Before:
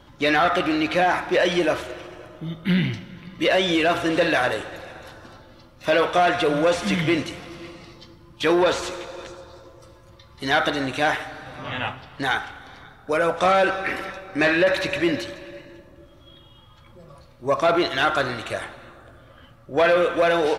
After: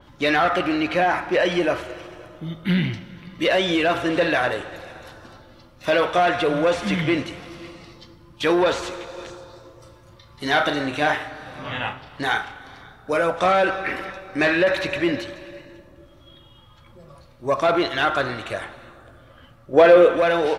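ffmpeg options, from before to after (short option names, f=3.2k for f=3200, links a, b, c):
-filter_complex "[0:a]asettb=1/sr,asplit=3[a][b][c];[a]atrim=end=0.404[d];[b]atrim=start=0.4:end=2.02,asetpts=PTS-STARTPTS,afade=t=in:d=0.004:c=qsin,afade=t=out:st=1.616:d=0.004:c=qsin,bandreject=f=3.6k:w=12[e];[c]atrim=start=2.016[f];[d][e]acrossfade=d=0.004:c1=hsin:c2=qsin[g];[g][f]acrossfade=d=0.004:c1=qsin:c2=hsin,asettb=1/sr,asplit=3[h][i][j];[h]atrim=end=9.134[k];[i]atrim=start=9.13:end=13.21,asetpts=PTS-STARTPTS,afade=t=in:d=0.004:c=qsin,afade=t=out:st=4.076:d=0.004:c=qsin,asplit=2[l][m];[m]adelay=34,volume=-7.5dB[n];[l][n]amix=inputs=2:normalize=0,atrim=end_sample=179928[o];[j]atrim=start=13.206[p];[k][o]acrossfade=d=0.004:c1=hsin:c2=qsin[q];[q][p]acrossfade=d=0.004:c1=qsin:c2=hsin,asettb=1/sr,asplit=3[r][s][t];[r]atrim=end=19.734[u];[s]atrim=start=19.73:end=20.17,asetpts=PTS-STARTPTS,afade=t=in:d=0.004:c=qsin,afade=t=out:st=0.436:d=0.004:c=qsin,equalizer=f=420:t=o:w=1.7:g=8.5[v];[t]atrim=start=20.166[w];[u][v]acrossfade=d=0.004:c1=hsin:c2=qsin[x];[x][w]acrossfade=d=0.004:c1=qsin:c2=hsin,adynamicequalizer=threshold=0.01:dfrequency=4200:dqfactor=0.7:tfrequency=4200:tqfactor=0.7:attack=5:release=100:ratio=0.375:range=3:mode=cutabove:tftype=highshelf"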